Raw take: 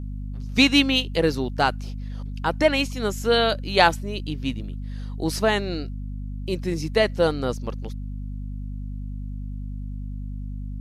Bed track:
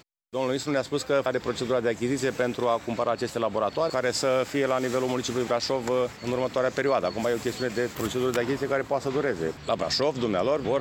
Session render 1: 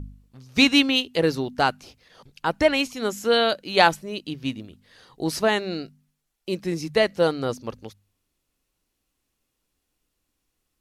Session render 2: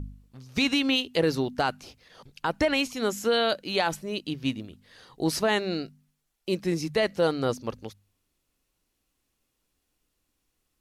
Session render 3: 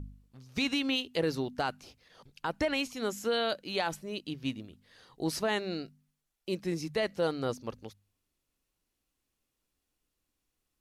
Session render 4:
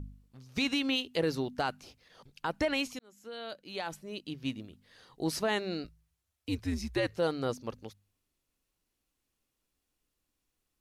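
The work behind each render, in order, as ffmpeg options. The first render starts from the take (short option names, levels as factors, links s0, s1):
-af "bandreject=f=50:t=h:w=4,bandreject=f=100:t=h:w=4,bandreject=f=150:t=h:w=4,bandreject=f=200:t=h:w=4,bandreject=f=250:t=h:w=4"
-af "alimiter=limit=0.2:level=0:latency=1:release=63"
-af "volume=0.501"
-filter_complex "[0:a]asettb=1/sr,asplit=3[s0][s1][s2];[s0]atrim=end=5.844[s3];[s1]atrim=start=5.84:end=7.18,asetpts=PTS-STARTPTS,afade=t=in:d=0.004:c=qsin,afade=t=out:st=1.336:d=0.004:c=qsin,afreqshift=-91[s4];[s2]atrim=start=7.176[s5];[s3][s4]acrossfade=d=0.004:c1=hsin:c2=qsin[s6];[s6][s5]acrossfade=d=0.004:c1=qsin:c2=hsin,asplit=2[s7][s8];[s7]atrim=end=2.99,asetpts=PTS-STARTPTS,afade=t=out:st=2.986:d=0.004:c=hsin[s9];[s8]atrim=start=2.99,asetpts=PTS-STARTPTS,afade=t=in:d=1.65[s10];[s9][s10]concat=n=2:v=0:a=1"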